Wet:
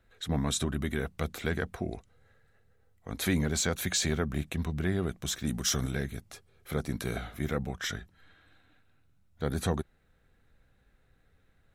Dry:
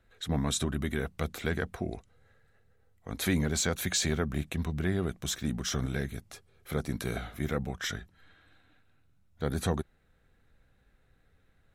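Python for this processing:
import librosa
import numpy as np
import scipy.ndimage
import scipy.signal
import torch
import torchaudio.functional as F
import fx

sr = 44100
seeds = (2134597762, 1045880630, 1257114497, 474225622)

y = fx.peak_eq(x, sr, hz=13000.0, db=10.5, octaves=1.9, at=(5.47, 5.91))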